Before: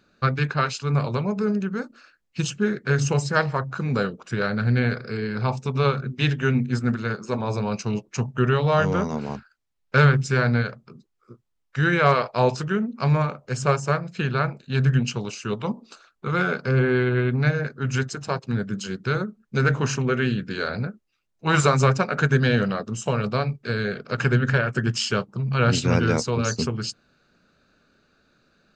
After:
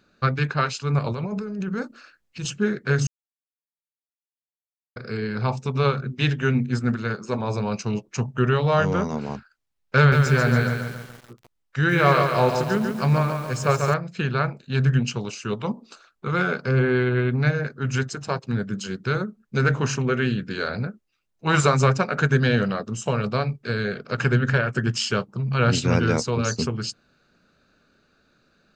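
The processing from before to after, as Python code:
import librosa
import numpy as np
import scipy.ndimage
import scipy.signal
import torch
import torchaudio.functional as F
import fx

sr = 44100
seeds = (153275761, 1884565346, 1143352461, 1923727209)

y = fx.over_compress(x, sr, threshold_db=-28.0, ratio=-1.0, at=(0.99, 2.45))
y = fx.echo_crushed(y, sr, ms=141, feedback_pct=55, bits=7, wet_db=-5.0, at=(9.98, 13.94))
y = fx.edit(y, sr, fx.silence(start_s=3.07, length_s=1.89), tone=tone)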